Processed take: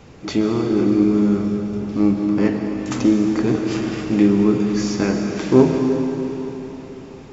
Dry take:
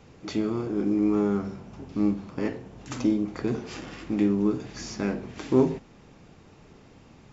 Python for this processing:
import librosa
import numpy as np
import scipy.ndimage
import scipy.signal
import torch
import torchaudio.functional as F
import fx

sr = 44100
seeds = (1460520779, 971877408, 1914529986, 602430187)

y = fx.peak_eq(x, sr, hz=860.0, db=-10.0, octaves=2.4, at=(1.03, 1.81))
y = fx.rev_freeverb(y, sr, rt60_s=3.9, hf_ratio=0.95, predelay_ms=90, drr_db=3.5)
y = y * 10.0 ** (8.0 / 20.0)